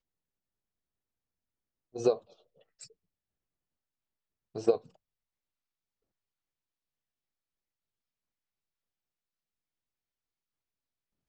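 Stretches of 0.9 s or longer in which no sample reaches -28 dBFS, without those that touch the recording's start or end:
2.14–4.56 s

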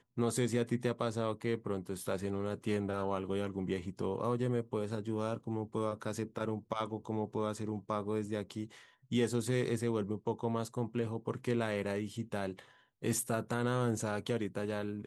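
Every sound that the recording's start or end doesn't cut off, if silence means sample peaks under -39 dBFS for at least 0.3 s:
9.12–12.59 s

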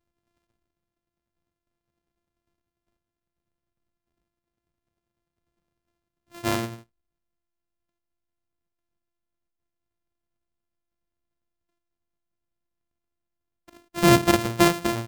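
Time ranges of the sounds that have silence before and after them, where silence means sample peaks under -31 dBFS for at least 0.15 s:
6.37–6.67 s

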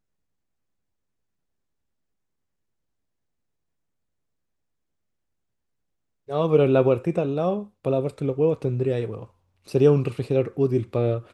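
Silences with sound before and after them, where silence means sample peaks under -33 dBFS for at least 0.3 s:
9.23–9.69 s

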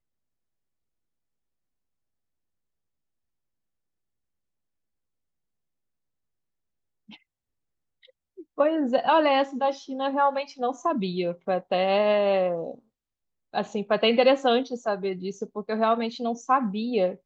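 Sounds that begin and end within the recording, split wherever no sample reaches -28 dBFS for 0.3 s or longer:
8.59–12.71 s

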